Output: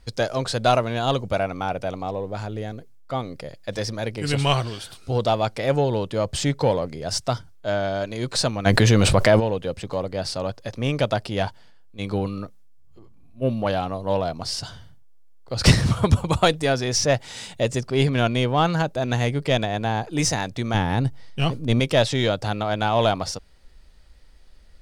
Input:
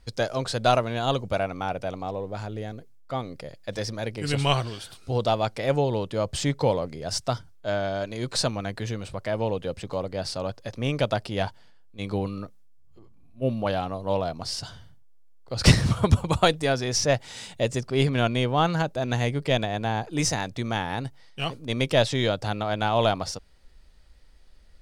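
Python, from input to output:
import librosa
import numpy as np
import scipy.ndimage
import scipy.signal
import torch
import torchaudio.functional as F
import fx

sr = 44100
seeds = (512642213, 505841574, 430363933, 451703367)

p1 = fx.low_shelf(x, sr, hz=330.0, db=10.0, at=(20.74, 21.8))
p2 = 10.0 ** (-19.0 / 20.0) * np.tanh(p1 / 10.0 ** (-19.0 / 20.0))
p3 = p1 + (p2 * 10.0 ** (-6.5 / 20.0))
y = fx.env_flatten(p3, sr, amount_pct=70, at=(8.65, 9.39), fade=0.02)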